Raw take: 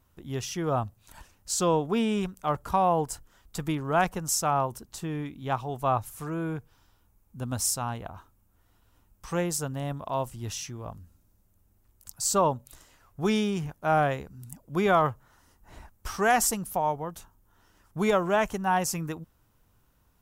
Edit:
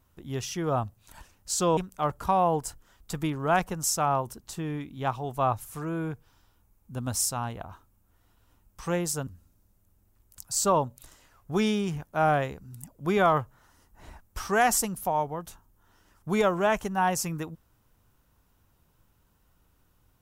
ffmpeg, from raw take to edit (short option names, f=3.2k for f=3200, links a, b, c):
-filter_complex "[0:a]asplit=3[a][b][c];[a]atrim=end=1.772[d];[b]atrim=start=2.218:end=9.722[e];[c]atrim=start=10.958[f];[d][e]acrossfade=d=0.004:c1=hsin:c2=hsin[g];[g][f]acrossfade=d=0.004:c1=hsin:c2=hsin"